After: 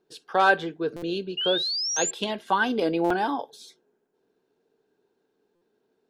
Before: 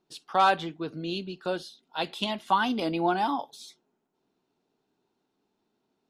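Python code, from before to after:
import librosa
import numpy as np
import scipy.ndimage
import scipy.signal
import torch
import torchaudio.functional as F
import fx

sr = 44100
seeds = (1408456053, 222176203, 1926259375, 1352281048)

y = fx.spec_paint(x, sr, seeds[0], shape='rise', start_s=1.37, length_s=0.74, low_hz=2800.0, high_hz=7500.0, level_db=-27.0)
y = fx.small_body(y, sr, hz=(450.0, 1600.0), ring_ms=25, db=13)
y = fx.buffer_glitch(y, sr, at_s=(0.96, 1.9, 3.04, 5.55), block=256, repeats=10)
y = F.gain(torch.from_numpy(y), -1.0).numpy()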